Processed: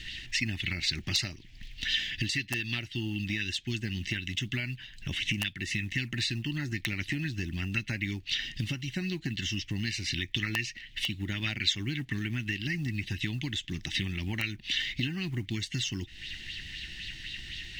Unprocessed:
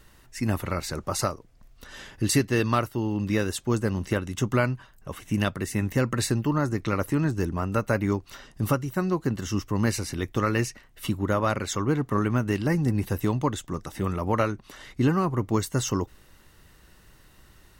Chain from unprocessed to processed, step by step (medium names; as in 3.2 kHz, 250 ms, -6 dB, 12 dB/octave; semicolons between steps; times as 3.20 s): FFT filter 110 Hz 0 dB, 220 Hz -2 dB, 350 Hz -5 dB, 500 Hz -28 dB, 770 Hz -17 dB, 1.2 kHz -26 dB, 1.8 kHz +7 dB, 3.1 kHz +15 dB, 7.2 kHz -1 dB, 13 kHz -22 dB; compression 8:1, threshold -39 dBFS, peak gain reduction 22.5 dB; short-mantissa float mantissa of 4-bit; integer overflow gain 27 dB; sweeping bell 3.9 Hz 530–4200 Hz +9 dB; trim +8 dB